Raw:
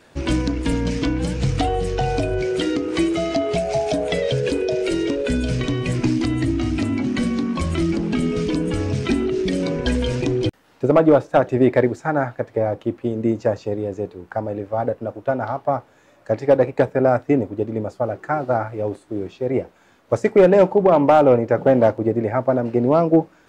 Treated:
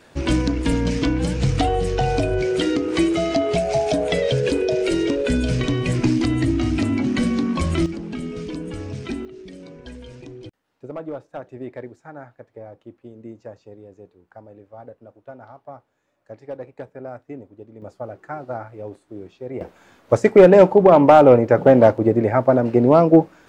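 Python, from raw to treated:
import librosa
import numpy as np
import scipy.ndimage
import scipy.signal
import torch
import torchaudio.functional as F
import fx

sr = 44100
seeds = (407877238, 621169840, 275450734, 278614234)

y = fx.gain(x, sr, db=fx.steps((0.0, 1.0), (7.86, -8.5), (9.25, -18.0), (17.82, -9.5), (19.61, 3.0)))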